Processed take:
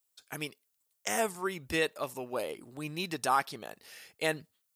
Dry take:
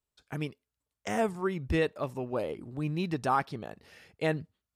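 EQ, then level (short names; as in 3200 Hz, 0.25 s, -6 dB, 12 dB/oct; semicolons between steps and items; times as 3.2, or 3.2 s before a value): RIAA curve recording; 0.0 dB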